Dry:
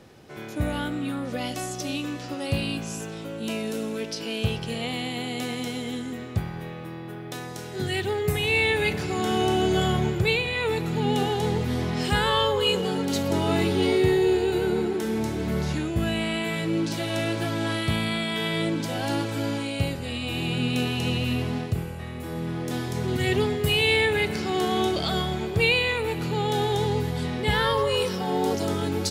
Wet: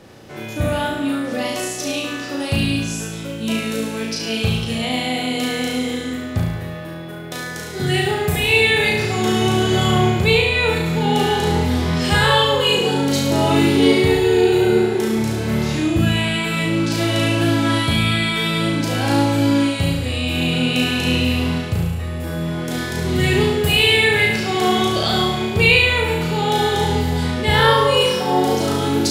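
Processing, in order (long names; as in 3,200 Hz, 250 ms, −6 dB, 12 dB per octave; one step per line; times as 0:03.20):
mains-hum notches 60/120/180/240/300/360/420 Hz
on a send: flutter between parallel walls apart 6.1 metres, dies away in 0.78 s
on the sum: level +5.5 dB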